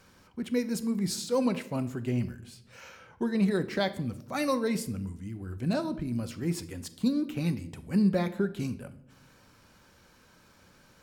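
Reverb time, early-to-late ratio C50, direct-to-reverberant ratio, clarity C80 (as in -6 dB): 0.75 s, 15.0 dB, 10.0 dB, 18.0 dB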